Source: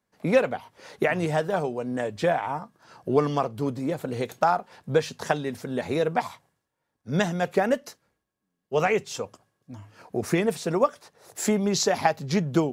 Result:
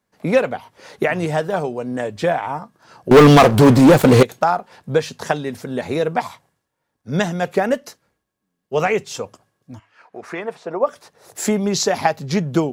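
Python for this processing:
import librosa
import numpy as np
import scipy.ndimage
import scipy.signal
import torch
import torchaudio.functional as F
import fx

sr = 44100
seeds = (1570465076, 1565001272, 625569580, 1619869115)

y = fx.leveller(x, sr, passes=5, at=(3.11, 4.23))
y = fx.bandpass_q(y, sr, hz=fx.line((9.78, 2400.0), (10.86, 640.0)), q=1.1, at=(9.78, 10.86), fade=0.02)
y = F.gain(torch.from_numpy(y), 4.5).numpy()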